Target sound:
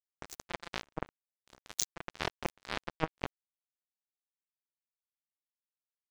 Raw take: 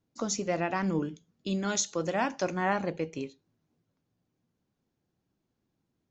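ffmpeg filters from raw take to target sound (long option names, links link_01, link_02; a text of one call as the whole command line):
ffmpeg -i in.wav -af "areverse,acompressor=threshold=-38dB:ratio=6,areverse,aecho=1:1:44|67:0.237|0.106,aeval=exprs='val(0)*sin(2*PI*160*n/s)':channel_layout=same,acrusher=bits=4:mix=0:aa=0.5,volume=14.5dB" out.wav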